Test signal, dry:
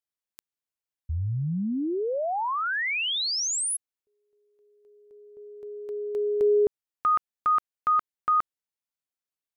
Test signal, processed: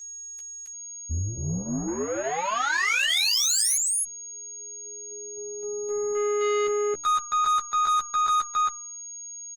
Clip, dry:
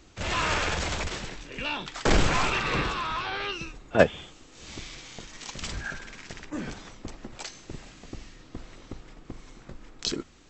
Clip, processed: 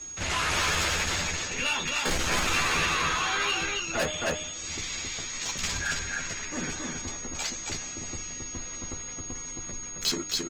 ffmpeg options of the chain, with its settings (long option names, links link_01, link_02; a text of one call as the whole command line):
ffmpeg -i in.wav -filter_complex "[0:a]bandreject=frequency=3000:width=24,bandreject=frequency=306.3:width_type=h:width=4,bandreject=frequency=612.6:width_type=h:width=4,bandreject=frequency=918.9:width_type=h:width=4,bandreject=frequency=1225.2:width_type=h:width=4,bandreject=frequency=1531.5:width_type=h:width=4,asplit=2[link_01][link_02];[link_02]aecho=0:1:270:0.631[link_03];[link_01][link_03]amix=inputs=2:normalize=0,aeval=exprs='(tanh(25.1*val(0)+0.15)-tanh(0.15))/25.1':channel_layout=same,aeval=exprs='val(0)+0.00501*sin(2*PI*6600*n/s)':channel_layout=same,acrossover=split=100|1200[link_04][link_05][link_06];[link_06]acontrast=60[link_07];[link_04][link_05][link_07]amix=inputs=3:normalize=0,asplit=2[link_08][link_09];[link_09]adelay=12,volume=-3.5dB[link_10];[link_08][link_10]amix=inputs=2:normalize=0" -ar 48000 -c:a libopus -b:a 20k out.opus